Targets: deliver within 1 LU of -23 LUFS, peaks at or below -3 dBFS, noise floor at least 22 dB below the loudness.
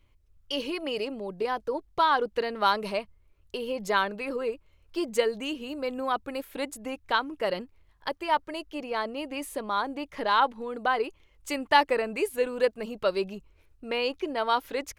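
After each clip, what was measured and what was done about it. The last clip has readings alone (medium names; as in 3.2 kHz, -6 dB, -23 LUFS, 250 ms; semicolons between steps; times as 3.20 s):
loudness -29.0 LUFS; peak level -8.0 dBFS; loudness target -23.0 LUFS
-> trim +6 dB; peak limiter -3 dBFS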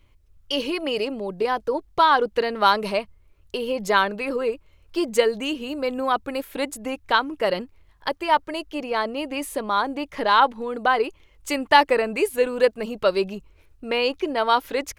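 loudness -23.0 LUFS; peak level -3.0 dBFS; noise floor -57 dBFS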